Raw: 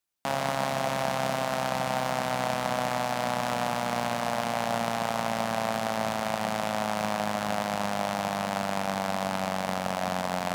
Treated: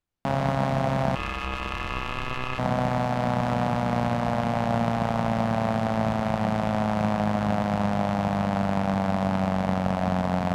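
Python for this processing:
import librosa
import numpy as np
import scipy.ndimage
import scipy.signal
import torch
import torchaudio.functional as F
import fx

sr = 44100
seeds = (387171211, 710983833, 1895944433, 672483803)

y = fx.ring_mod(x, sr, carrier_hz=1900.0, at=(1.15, 2.59))
y = fx.riaa(y, sr, side='playback')
y = y * 10.0 ** (1.0 / 20.0)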